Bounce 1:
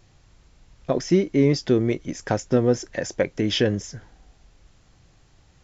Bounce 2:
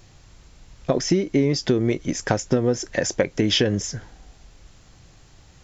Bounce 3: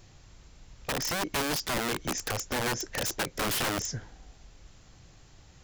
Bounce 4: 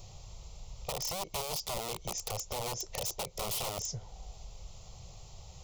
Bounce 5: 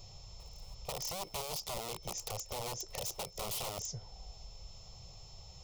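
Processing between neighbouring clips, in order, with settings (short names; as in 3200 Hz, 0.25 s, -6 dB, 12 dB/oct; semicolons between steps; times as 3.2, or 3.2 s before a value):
high shelf 4700 Hz +4.5 dB; compressor 10:1, threshold -21 dBFS, peak gain reduction 9 dB; gain +5.5 dB
limiter -12.5 dBFS, peak gain reduction 8 dB; wrapped overs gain 20 dB; gain -4 dB
compressor 2:1, threshold -46 dBFS, peak gain reduction 10.5 dB; fixed phaser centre 680 Hz, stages 4; gain +6.5 dB
reverse echo 0.49 s -24 dB; whine 5300 Hz -53 dBFS; gain -3.5 dB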